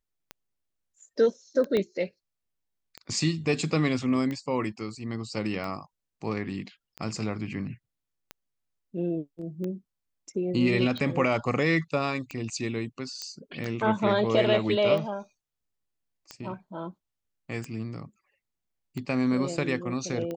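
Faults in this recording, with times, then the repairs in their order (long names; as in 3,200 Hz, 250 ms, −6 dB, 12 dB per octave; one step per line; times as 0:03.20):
scratch tick 45 rpm −22 dBFS
0:01.77: click −16 dBFS
0:13.22: click −21 dBFS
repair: click removal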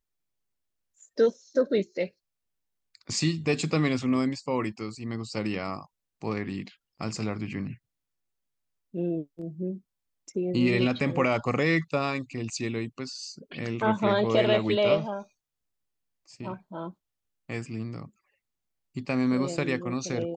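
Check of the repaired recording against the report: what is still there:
0:01.77: click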